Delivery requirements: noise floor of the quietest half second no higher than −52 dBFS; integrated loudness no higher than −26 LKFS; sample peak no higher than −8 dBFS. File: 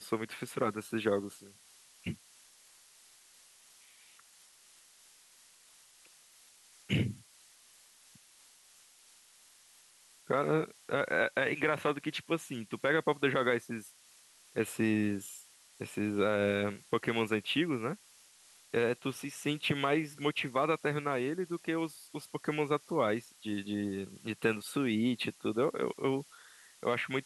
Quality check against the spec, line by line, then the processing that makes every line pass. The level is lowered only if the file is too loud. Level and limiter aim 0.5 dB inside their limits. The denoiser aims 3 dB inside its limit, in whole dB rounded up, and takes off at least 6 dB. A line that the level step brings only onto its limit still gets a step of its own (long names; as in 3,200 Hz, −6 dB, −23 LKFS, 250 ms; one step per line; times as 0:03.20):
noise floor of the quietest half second −61 dBFS: in spec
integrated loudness −33.5 LKFS: in spec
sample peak −15.0 dBFS: in spec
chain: no processing needed